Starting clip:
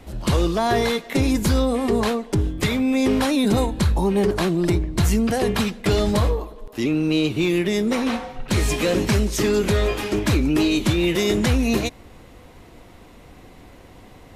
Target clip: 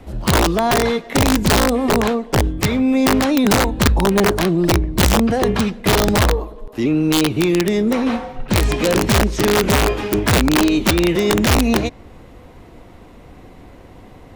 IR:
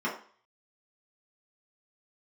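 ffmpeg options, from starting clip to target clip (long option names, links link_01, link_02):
-filter_complex "[0:a]highshelf=frequency=2100:gain=-7.5,acrossover=split=450|7300[link_01][link_02][link_03];[link_03]acompressor=threshold=-57dB:ratio=6[link_04];[link_01][link_02][link_04]amix=inputs=3:normalize=0,aeval=exprs='(mod(4.22*val(0)+1,2)-1)/4.22':channel_layout=same,volume=4.5dB"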